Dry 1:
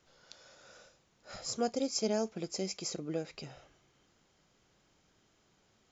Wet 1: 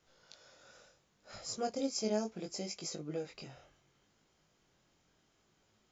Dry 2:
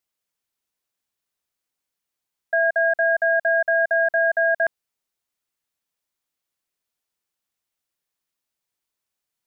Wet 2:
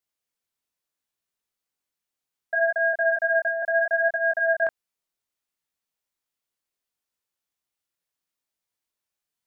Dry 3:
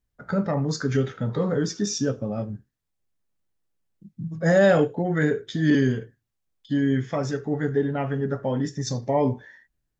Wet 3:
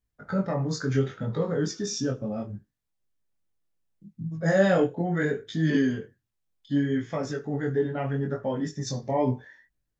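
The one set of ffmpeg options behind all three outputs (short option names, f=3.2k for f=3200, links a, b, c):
-af "flanger=delay=18.5:depth=5.1:speed=0.7"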